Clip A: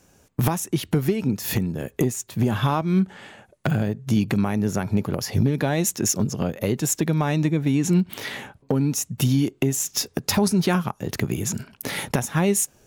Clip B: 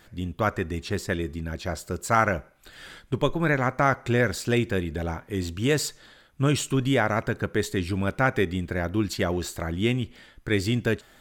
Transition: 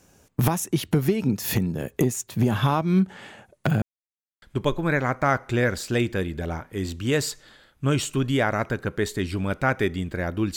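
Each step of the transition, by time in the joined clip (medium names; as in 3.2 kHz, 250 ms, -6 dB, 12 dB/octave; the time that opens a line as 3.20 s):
clip A
3.82–4.42 s: mute
4.42 s: go over to clip B from 2.99 s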